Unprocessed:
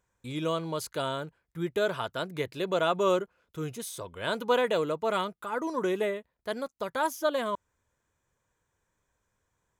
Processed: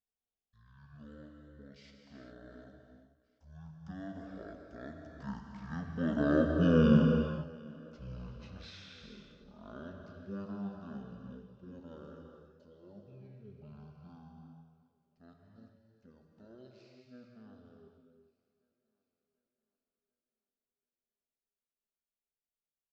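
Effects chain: Doppler pass-by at 2.87 s, 21 m/s, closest 3.3 m; on a send: thinning echo 316 ms, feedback 51%, high-pass 330 Hz, level -23 dB; on the sum: gated-style reverb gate 200 ms flat, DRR 2 dB; speed mistake 78 rpm record played at 33 rpm

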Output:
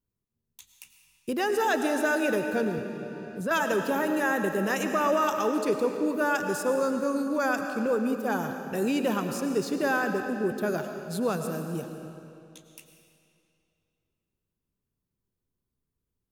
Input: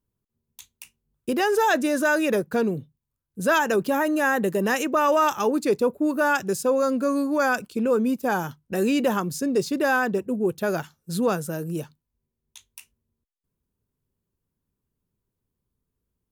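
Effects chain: band-stop 920 Hz, Q 30; on a send at -5.5 dB: reverberation RT60 2.6 s, pre-delay 65 ms; 2.78–3.51 s: on the sum: three bands compressed up and down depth 70%; trim -5 dB

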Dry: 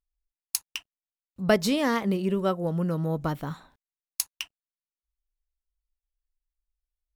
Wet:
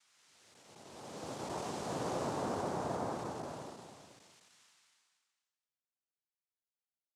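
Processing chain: spectral blur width 1040 ms; noise-vocoded speech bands 2; trim -7 dB

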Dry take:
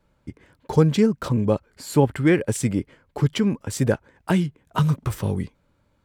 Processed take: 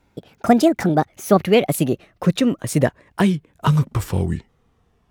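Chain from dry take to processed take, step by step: gliding tape speed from 161% -> 76%; trim +3.5 dB

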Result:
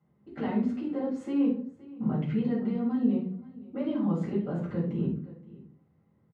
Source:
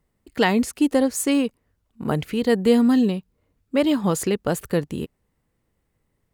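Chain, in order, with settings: tape spacing loss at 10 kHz 41 dB; compression 10:1, threshold -29 dBFS, peak gain reduction 16 dB; peaking EQ 160 Hz +5.5 dB 0.63 oct; hum notches 60/120/180/240 Hz; delay 523 ms -22.5 dB; peak limiter -27 dBFS, peak gain reduction 8.5 dB; high-pass 98 Hz 24 dB/octave; simulated room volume 400 m³, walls furnished, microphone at 7.1 m; trim -6 dB

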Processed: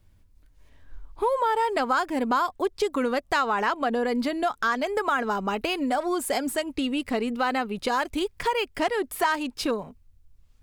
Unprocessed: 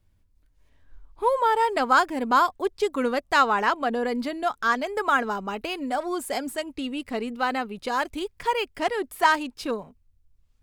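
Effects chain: in parallel at +0.5 dB: peak limiter -17 dBFS, peak gain reduction 9.5 dB; on the sum: compression 2.5:1, threshold -24 dBFS, peak gain reduction 9 dB

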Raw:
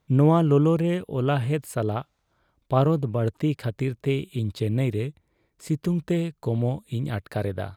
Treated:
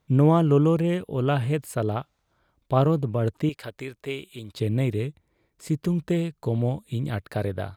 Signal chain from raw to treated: 3.49–4.55 s: peaking EQ 120 Hz -14.5 dB 3 oct

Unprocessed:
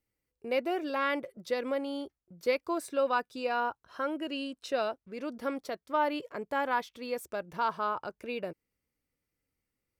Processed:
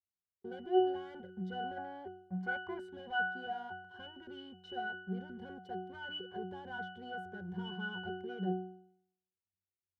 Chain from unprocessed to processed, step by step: waveshaping leveller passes 5; in parallel at +3 dB: peak limiter -26 dBFS, peak gain reduction 9 dB; on the sum: pitch-class resonator F#, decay 0.66 s; time-frequency box 1.77–2.80 s, 550–2500 Hz +10 dB

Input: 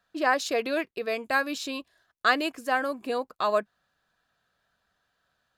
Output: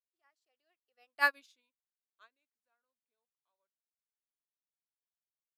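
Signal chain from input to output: Doppler pass-by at 1.31 s, 32 m/s, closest 3.4 m; high-pass 1 kHz 6 dB/octave; upward expansion 2.5:1, over -48 dBFS; trim +2.5 dB

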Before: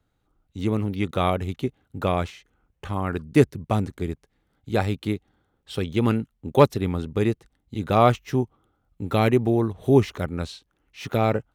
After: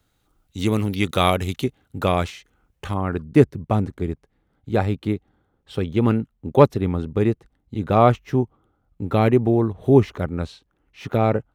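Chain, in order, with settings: treble shelf 2.5 kHz +10.5 dB, from 1.64 s +4 dB, from 2.94 s -10 dB; trim +3 dB

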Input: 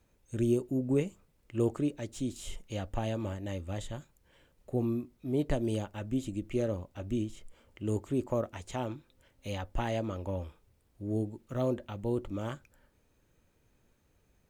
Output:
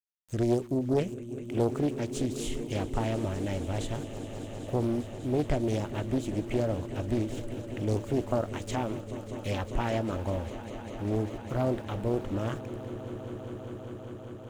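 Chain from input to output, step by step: in parallel at +2 dB: compression, threshold -39 dBFS, peak gain reduction 15.5 dB; on the sum: small samples zeroed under -49 dBFS; echo with a slow build-up 199 ms, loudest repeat 5, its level -16 dB; loudspeaker Doppler distortion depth 0.46 ms

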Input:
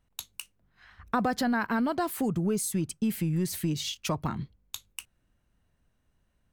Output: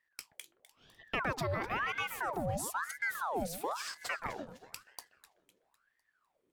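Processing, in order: echo whose repeats swap between lows and highs 126 ms, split 1.4 kHz, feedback 66%, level -11 dB; ring modulator with a swept carrier 1.1 kHz, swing 70%, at 1 Hz; trim -5 dB

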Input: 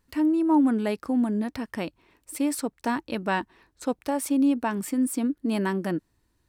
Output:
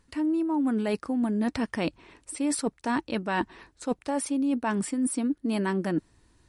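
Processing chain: reverse; compression 8:1, threshold -33 dBFS, peak gain reduction 16.5 dB; reverse; trim +9 dB; MP3 48 kbps 44.1 kHz

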